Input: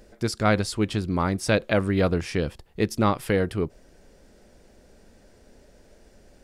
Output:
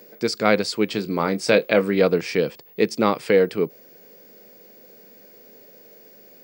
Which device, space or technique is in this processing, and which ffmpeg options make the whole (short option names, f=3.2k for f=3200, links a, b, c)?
old television with a line whistle: -filter_complex "[0:a]asettb=1/sr,asplit=3[a][b][c];[a]atrim=end=0.934[d];[b]atrim=start=0.93:end=1.95,asetpts=PTS-STARTPTS,afade=t=in:d=0.004:c=qsin,afade=t=out:st=1.016:d=0.004:c=qsin,asplit=2[e][f];[f]adelay=25,volume=-11dB[g];[e][g]amix=inputs=2:normalize=0,atrim=end_sample=44982[h];[c]atrim=start=1.946[i];[d][h]acrossfade=d=0.004:c1=hsin:c2=qsin[j];[j][i]acrossfade=d=0.004:c1=qsin:c2=hsin,highpass=f=160:w=0.5412,highpass=f=160:w=1.3066,equalizer=f=470:t=q:w=4:g=8,equalizer=f=2.3k:t=q:w=4:g=6,equalizer=f=4.6k:t=q:w=4:g=6,lowpass=f=8.6k:w=0.5412,lowpass=f=8.6k:w=1.3066,aeval=exprs='val(0)+0.00355*sin(2*PI*15625*n/s)':c=same,volume=1.5dB"